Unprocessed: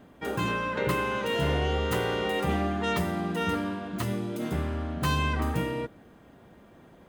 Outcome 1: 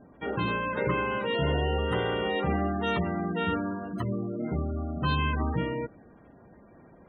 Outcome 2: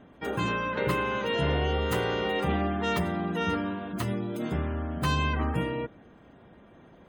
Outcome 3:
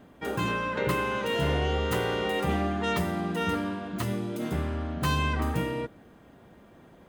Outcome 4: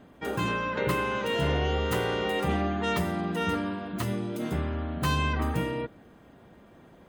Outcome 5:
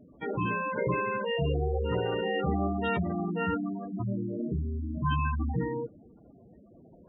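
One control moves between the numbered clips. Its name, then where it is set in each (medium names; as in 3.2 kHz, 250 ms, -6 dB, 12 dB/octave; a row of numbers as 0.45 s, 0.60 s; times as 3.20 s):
spectral gate, under each frame's peak: -20 dB, -35 dB, -60 dB, -45 dB, -10 dB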